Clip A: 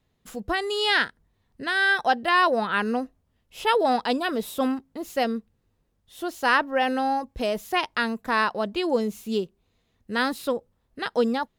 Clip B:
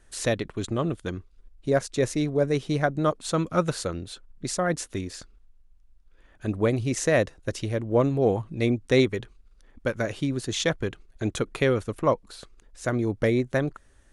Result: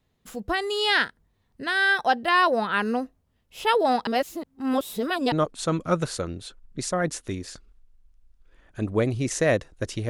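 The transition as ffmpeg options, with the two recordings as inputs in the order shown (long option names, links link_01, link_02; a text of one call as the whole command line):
ffmpeg -i cue0.wav -i cue1.wav -filter_complex "[0:a]apad=whole_dur=10.09,atrim=end=10.09,asplit=2[link_01][link_02];[link_01]atrim=end=4.072[link_03];[link_02]atrim=start=4.068:end=5.322,asetpts=PTS-STARTPTS,areverse[link_04];[1:a]atrim=start=2.978:end=7.75[link_05];[link_03][link_04]acrossfade=duration=0.004:curve1=hsin:curve2=hsin[link_06];[link_06][link_05]acrossfade=duration=0.004:curve1=hsin:curve2=hsin" out.wav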